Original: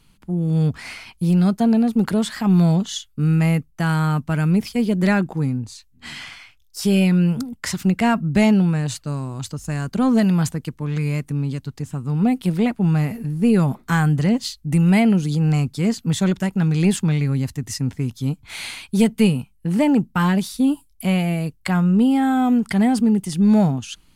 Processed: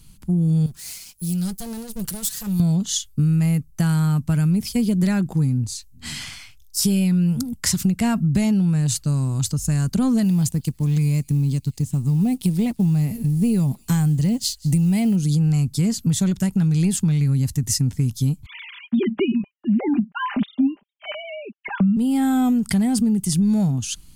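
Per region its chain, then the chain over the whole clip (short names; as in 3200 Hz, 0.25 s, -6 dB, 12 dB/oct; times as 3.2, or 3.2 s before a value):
0.66–2.6 minimum comb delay 5.8 ms + pre-emphasis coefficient 0.8
10.25–15.16 G.711 law mismatch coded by A + bell 1400 Hz -8 dB 0.69 oct + thin delay 0.187 s, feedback 52%, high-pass 3300 Hz, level -22 dB
18.46–21.97 sine-wave speech + comb 5 ms, depth 52%
whole clip: tone controls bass +12 dB, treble +14 dB; compressor, threshold -14 dBFS; gain -2.5 dB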